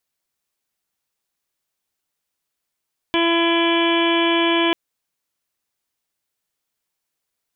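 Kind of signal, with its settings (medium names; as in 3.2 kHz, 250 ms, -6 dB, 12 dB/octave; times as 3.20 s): steady additive tone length 1.59 s, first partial 336 Hz, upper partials -7/-5/-19.5/-9.5/-17.5/-6/-17.5/-7/-9 dB, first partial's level -18 dB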